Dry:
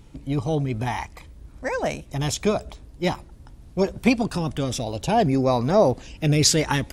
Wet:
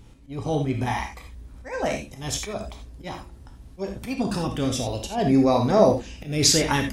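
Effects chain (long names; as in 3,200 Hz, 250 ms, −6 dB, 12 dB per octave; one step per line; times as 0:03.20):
volume swells 204 ms
reverb whose tail is shaped and stops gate 110 ms flat, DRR 2.5 dB
level −1 dB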